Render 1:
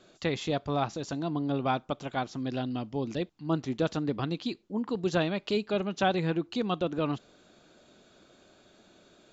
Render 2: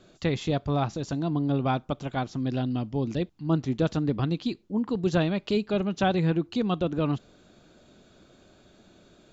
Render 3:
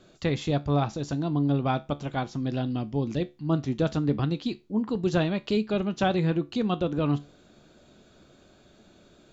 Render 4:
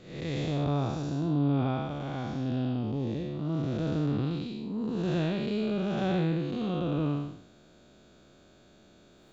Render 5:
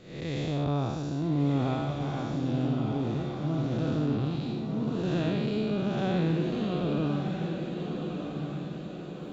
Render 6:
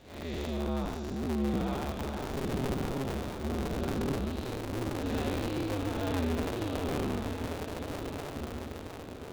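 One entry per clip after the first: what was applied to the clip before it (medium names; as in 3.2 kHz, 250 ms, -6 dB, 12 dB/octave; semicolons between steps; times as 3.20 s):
bass shelf 200 Hz +11 dB
feedback comb 72 Hz, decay 0.26 s, harmonics all, mix 50%; trim +3.5 dB
spectral blur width 271 ms
echo that smears into a reverb 1289 ms, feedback 50%, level -5 dB
cycle switcher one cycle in 2, inverted; trim -4 dB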